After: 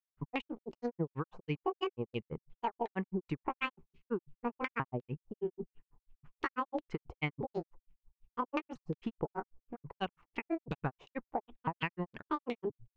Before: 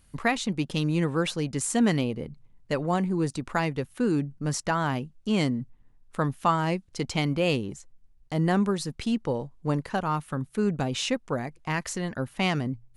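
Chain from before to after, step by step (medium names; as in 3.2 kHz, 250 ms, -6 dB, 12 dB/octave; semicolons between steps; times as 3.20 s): pitch shift switched off and on +8 st, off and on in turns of 489 ms; rippled EQ curve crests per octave 0.72, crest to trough 6 dB; granulator 95 ms, grains 6.1 per s; LFO low-pass saw down 2.8 Hz 530–3600 Hz; compression 6:1, threshold -29 dBFS, peak gain reduction 10.5 dB; trim -2 dB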